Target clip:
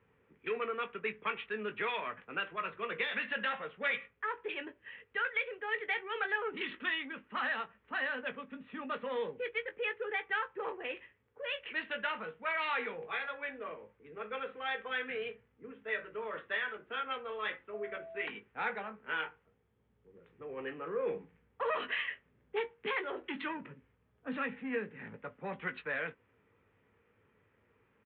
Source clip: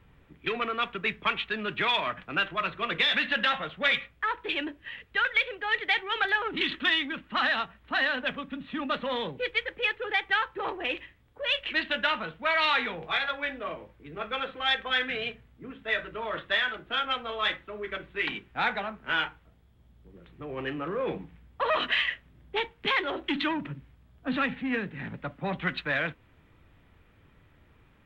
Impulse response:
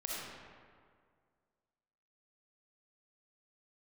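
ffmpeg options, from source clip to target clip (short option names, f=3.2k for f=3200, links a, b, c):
-filter_complex "[0:a]highpass=130,equalizer=f=150:t=q:w=4:g=-7,equalizer=f=310:t=q:w=4:g=-6,equalizer=f=450:t=q:w=4:g=9,equalizer=f=670:t=q:w=4:g=-5,lowpass=f=2.7k:w=0.5412,lowpass=f=2.7k:w=1.3066,asettb=1/sr,asplit=3[a][b][c];[a]atrim=end=17.744[d];[b]atrim=start=17.74:end=18.26,asetpts=PTS-STARTPTS,afade=t=in:d=0.004:c=qsin,afade=t=out:st=0.516:d=0.004:c=qsin,aeval=exprs='val(0)+0.02*sin(2*PI*660*n/s)':c=same[e];[c]atrim=start=18.256[f];[d][e]acrossfade=d=0.004:c1=hsin:c2=qsin[g];[g][f]acrossfade=d=0.004:c1=qsin:c2=hsin,asplit=2[h][i];[i]adelay=19,volume=-10dB[j];[h][j]amix=inputs=2:normalize=0,volume=-8dB"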